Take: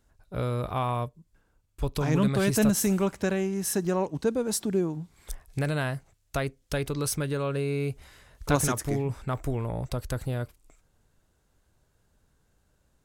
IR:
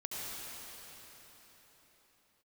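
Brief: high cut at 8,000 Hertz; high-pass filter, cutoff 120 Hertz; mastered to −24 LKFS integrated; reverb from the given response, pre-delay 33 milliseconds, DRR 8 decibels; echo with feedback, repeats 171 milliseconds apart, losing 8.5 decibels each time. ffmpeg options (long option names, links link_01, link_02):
-filter_complex "[0:a]highpass=120,lowpass=8000,aecho=1:1:171|342|513|684:0.376|0.143|0.0543|0.0206,asplit=2[link_01][link_02];[1:a]atrim=start_sample=2205,adelay=33[link_03];[link_02][link_03]afir=irnorm=-1:irlink=0,volume=-10.5dB[link_04];[link_01][link_04]amix=inputs=2:normalize=0,volume=4.5dB"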